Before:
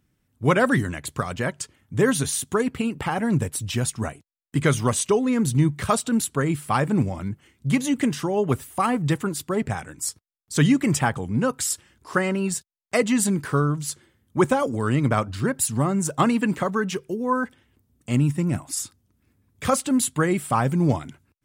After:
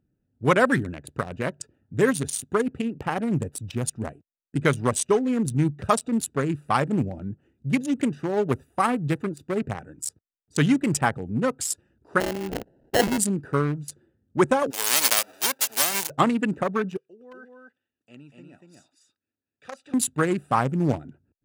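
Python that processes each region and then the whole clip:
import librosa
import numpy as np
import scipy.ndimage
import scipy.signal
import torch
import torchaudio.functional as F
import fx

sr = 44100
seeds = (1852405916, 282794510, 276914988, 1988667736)

y = fx.chain(x, sr, fx.highpass(hz=260.0, slope=12),
    fx.sample_hold(seeds[0], rate_hz=1200.0, jitter_pct=0),
    fx.sustainer(db_per_s=80.0), at=(12.2, 13.18))
y = fx.envelope_flatten(y, sr, power=0.1, at=(14.7, 16.09), fade=0.02)
y = fx.highpass(y, sr, hz=400.0, slope=12, at=(14.7, 16.09), fade=0.02)
y = fx.chain(y, sr, fx.bandpass_q(hz=3700.0, q=0.9),
    fx.echo_single(ms=239, db=-3.0), at=(16.97, 19.94))
y = fx.wiener(y, sr, points=41)
y = fx.low_shelf(y, sr, hz=220.0, db=-8.0)
y = F.gain(torch.from_numpy(y), 2.0).numpy()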